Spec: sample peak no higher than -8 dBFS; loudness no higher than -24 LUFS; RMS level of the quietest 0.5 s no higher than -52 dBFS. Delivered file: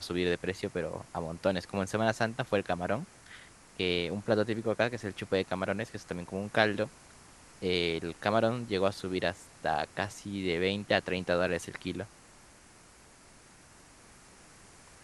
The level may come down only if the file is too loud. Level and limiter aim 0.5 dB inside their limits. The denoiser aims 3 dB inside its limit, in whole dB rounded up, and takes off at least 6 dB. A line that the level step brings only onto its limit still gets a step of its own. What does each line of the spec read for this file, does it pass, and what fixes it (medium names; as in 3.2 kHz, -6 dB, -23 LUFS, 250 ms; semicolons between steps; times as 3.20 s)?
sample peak -7.0 dBFS: fail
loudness -32.0 LUFS: pass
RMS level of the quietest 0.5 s -57 dBFS: pass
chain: peak limiter -8.5 dBFS